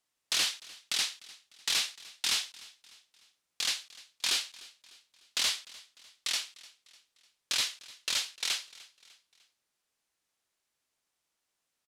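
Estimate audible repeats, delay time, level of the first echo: 3, 300 ms, -21.0 dB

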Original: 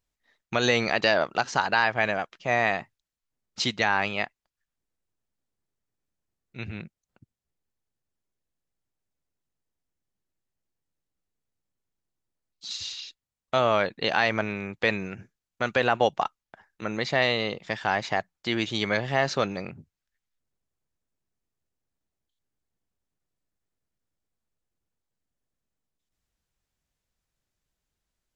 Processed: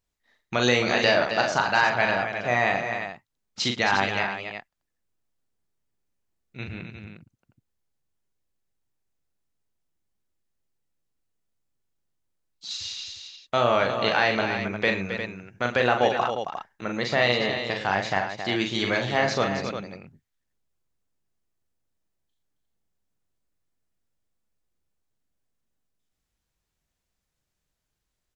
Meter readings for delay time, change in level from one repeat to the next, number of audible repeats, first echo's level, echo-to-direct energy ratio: 41 ms, no regular repeats, 4, -5.0 dB, -2.0 dB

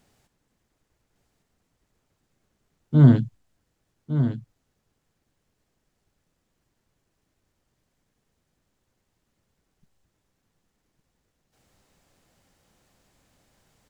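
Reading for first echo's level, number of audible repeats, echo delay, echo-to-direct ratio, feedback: -9.5 dB, 1, 1158 ms, -9.5 dB, no regular repeats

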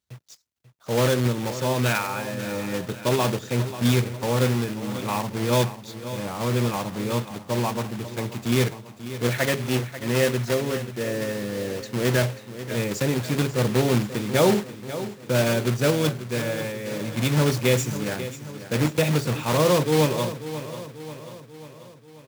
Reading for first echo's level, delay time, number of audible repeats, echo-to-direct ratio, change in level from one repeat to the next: -13.0 dB, 539 ms, 5, -11.5 dB, -5.0 dB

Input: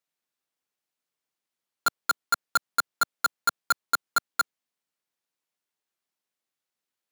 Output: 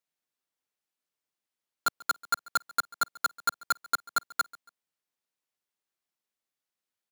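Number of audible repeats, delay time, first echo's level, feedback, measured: 2, 140 ms, -22.5 dB, 35%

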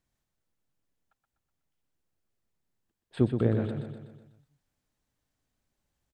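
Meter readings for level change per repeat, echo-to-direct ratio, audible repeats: -5.5 dB, -5.5 dB, 6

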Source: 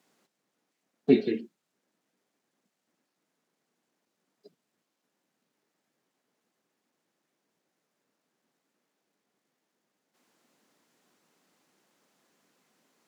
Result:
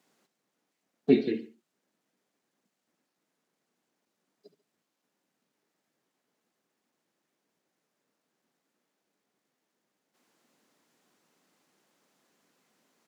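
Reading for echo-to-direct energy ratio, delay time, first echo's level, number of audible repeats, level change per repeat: -15.5 dB, 71 ms, -16.0 dB, 2, -7.0 dB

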